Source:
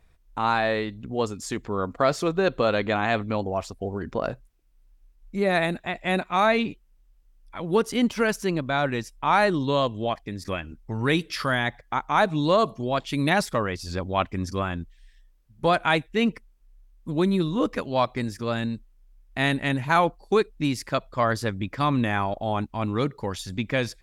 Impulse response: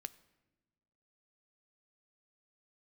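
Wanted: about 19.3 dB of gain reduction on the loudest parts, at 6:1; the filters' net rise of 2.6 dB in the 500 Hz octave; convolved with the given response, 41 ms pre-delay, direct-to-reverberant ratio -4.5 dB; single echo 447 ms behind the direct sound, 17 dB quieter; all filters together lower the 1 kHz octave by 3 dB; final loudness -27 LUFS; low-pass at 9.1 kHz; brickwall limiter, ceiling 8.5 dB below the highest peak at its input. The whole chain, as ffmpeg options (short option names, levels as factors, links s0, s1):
-filter_complex "[0:a]lowpass=9100,equalizer=f=500:t=o:g=5,equalizer=f=1000:t=o:g=-6,acompressor=threshold=0.0158:ratio=6,alimiter=level_in=1.78:limit=0.0631:level=0:latency=1,volume=0.562,aecho=1:1:447:0.141,asplit=2[s0][s1];[1:a]atrim=start_sample=2205,adelay=41[s2];[s1][s2]afir=irnorm=-1:irlink=0,volume=2.66[s3];[s0][s3]amix=inputs=2:normalize=0,volume=2.51"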